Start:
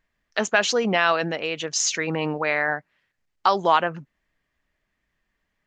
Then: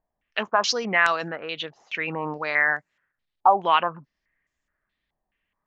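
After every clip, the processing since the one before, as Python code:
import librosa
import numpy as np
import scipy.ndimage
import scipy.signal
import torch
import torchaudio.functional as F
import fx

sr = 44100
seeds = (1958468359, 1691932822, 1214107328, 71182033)

y = fx.dynamic_eq(x, sr, hz=1100.0, q=2.1, threshold_db=-32.0, ratio=4.0, max_db=6)
y = fx.filter_held_lowpass(y, sr, hz=4.7, low_hz=780.0, high_hz=7100.0)
y = F.gain(torch.from_numpy(y), -6.5).numpy()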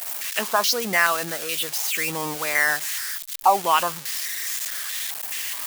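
y = x + 0.5 * 10.0 ** (-17.0 / 20.0) * np.diff(np.sign(x), prepend=np.sign(x[:1]))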